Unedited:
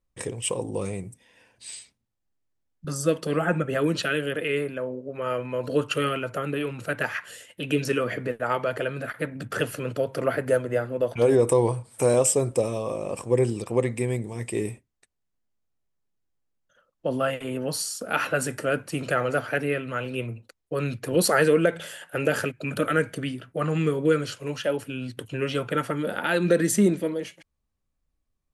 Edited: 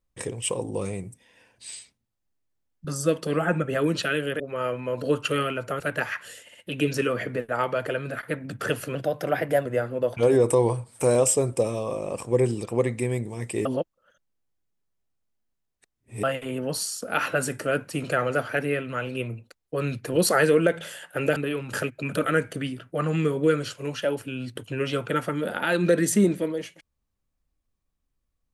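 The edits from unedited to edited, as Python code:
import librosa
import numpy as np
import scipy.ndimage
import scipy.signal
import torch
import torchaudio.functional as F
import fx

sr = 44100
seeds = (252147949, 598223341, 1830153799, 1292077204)

y = fx.edit(x, sr, fx.cut(start_s=4.4, length_s=0.66),
    fx.move(start_s=6.46, length_s=0.37, to_s=22.35),
    fx.stutter(start_s=7.46, slice_s=0.06, count=3),
    fx.speed_span(start_s=9.86, length_s=0.78, speed=1.11),
    fx.reverse_span(start_s=14.64, length_s=2.58), tone=tone)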